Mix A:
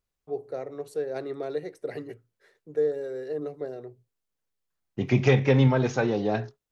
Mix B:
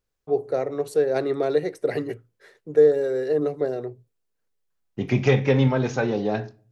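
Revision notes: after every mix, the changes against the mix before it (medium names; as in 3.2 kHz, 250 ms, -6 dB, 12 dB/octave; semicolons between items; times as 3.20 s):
first voice +9.5 dB; reverb: on, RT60 0.40 s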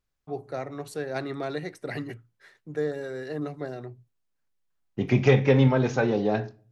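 first voice: add peaking EQ 460 Hz -14 dB 0.9 oct; master: add treble shelf 5.4 kHz -4.5 dB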